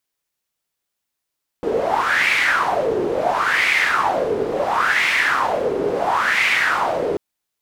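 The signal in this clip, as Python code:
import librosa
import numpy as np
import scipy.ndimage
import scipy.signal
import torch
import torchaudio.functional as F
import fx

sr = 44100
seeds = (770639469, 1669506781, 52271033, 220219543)

y = fx.wind(sr, seeds[0], length_s=5.54, low_hz=410.0, high_hz=2200.0, q=5.3, gusts=4, swing_db=4)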